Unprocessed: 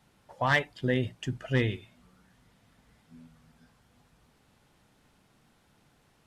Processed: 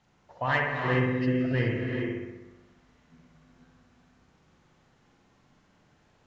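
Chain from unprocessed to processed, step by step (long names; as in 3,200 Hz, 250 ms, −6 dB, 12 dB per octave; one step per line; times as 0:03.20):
hearing-aid frequency compression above 2,400 Hz 1.5 to 1
mains-hum notches 50/100/150/200/250 Hz
bucket-brigade delay 63 ms, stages 1,024, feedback 66%, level −3 dB
reverb whose tail is shaped and stops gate 440 ms rising, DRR 3 dB
level −2.5 dB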